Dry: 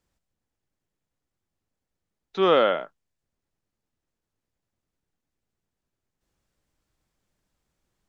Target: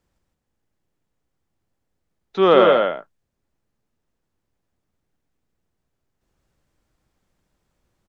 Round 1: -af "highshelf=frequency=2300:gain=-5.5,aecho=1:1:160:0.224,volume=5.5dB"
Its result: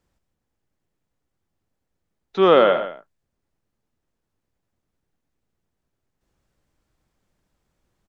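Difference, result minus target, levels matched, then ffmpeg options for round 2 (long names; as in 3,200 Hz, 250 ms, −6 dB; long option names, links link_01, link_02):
echo-to-direct −9.5 dB
-af "highshelf=frequency=2300:gain=-5.5,aecho=1:1:160:0.668,volume=5.5dB"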